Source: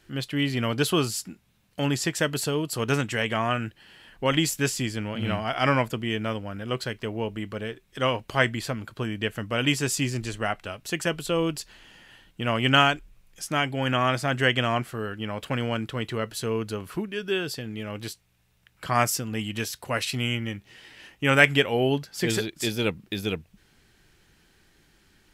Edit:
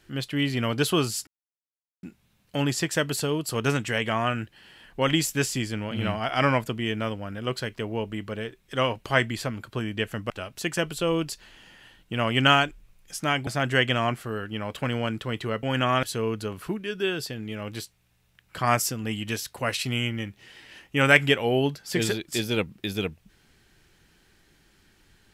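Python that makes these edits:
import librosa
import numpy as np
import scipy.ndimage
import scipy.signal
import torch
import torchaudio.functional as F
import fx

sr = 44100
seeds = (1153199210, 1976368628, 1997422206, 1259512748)

y = fx.edit(x, sr, fx.insert_silence(at_s=1.27, length_s=0.76),
    fx.cut(start_s=9.54, length_s=1.04),
    fx.move(start_s=13.75, length_s=0.4, to_s=16.31), tone=tone)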